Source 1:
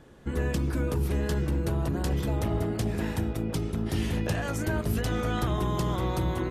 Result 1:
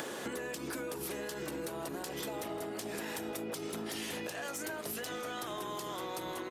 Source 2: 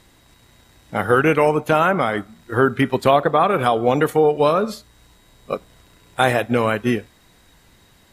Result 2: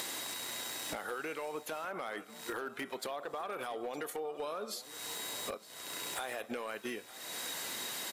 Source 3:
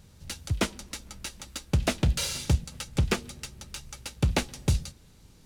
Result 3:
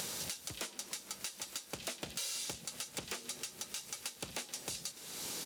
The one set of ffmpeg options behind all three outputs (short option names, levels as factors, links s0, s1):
-af "highpass=370,highshelf=f=3700:g=8.5,acompressor=mode=upward:threshold=0.0891:ratio=2.5,alimiter=limit=0.224:level=0:latency=1:release=48,acompressor=threshold=0.0251:ratio=20,asoftclip=type=hard:threshold=0.0355,aecho=1:1:914:0.133,volume=0.708"